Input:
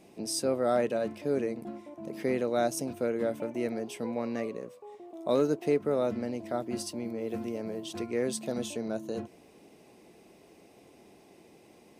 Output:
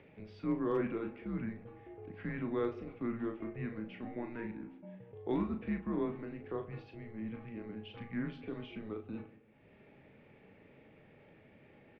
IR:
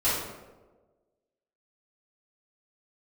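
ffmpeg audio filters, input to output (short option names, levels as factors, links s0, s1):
-filter_complex "[0:a]agate=range=0.282:threshold=0.00355:ratio=16:detection=peak,lowshelf=f=180:g=-11,acompressor=mode=upward:threshold=0.0112:ratio=2.5,highpass=f=370:t=q:w=0.5412,highpass=f=370:t=q:w=1.307,lowpass=f=3100:t=q:w=0.5176,lowpass=f=3100:t=q:w=0.7071,lowpass=f=3100:t=q:w=1.932,afreqshift=-230,asplit=2[s0][s1];[s1]adelay=37,volume=0.447[s2];[s0][s2]amix=inputs=2:normalize=0,asplit=2[s3][s4];[1:a]atrim=start_sample=2205,asetrate=52920,aresample=44100[s5];[s4][s5]afir=irnorm=-1:irlink=0,volume=0.075[s6];[s3][s6]amix=inputs=2:normalize=0,asoftclip=type=hard:threshold=0.119,volume=0.531"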